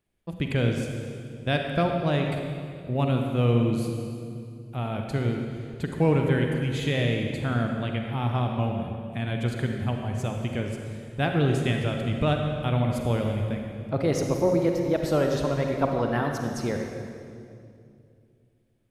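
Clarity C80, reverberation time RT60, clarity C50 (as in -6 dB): 4.0 dB, 2.5 s, 3.0 dB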